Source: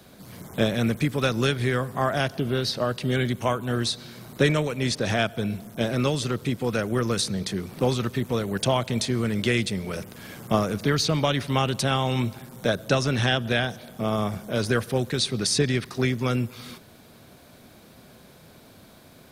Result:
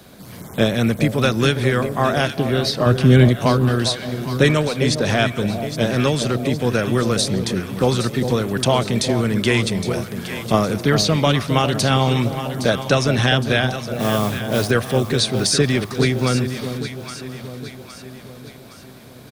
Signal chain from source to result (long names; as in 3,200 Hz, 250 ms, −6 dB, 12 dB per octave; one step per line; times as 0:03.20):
0:02.86–0:03.29: low-shelf EQ 370 Hz +11 dB
single-tap delay 1,023 ms −23.5 dB
0:13.92–0:14.71: noise that follows the level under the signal 15 dB
on a send: delay that swaps between a low-pass and a high-pass 407 ms, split 850 Hz, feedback 69%, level −7.5 dB
on the sum: level +5.5 dB